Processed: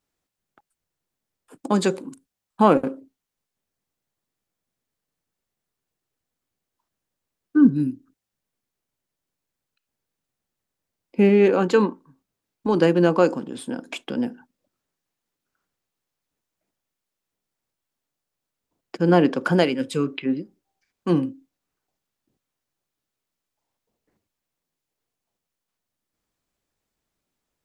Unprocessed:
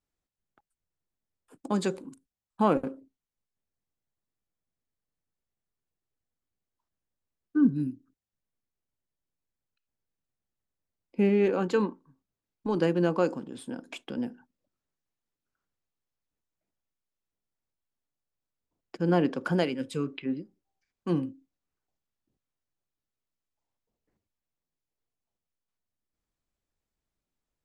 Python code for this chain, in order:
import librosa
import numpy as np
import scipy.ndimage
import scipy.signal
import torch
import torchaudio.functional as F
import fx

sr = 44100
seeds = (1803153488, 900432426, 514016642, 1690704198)

y = fx.low_shelf(x, sr, hz=86.0, db=-10.0)
y = y * 10.0 ** (8.5 / 20.0)